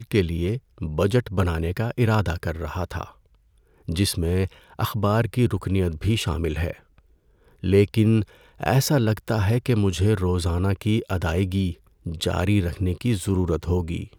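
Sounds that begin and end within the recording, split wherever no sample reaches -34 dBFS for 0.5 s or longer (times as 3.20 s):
3.88–6.73 s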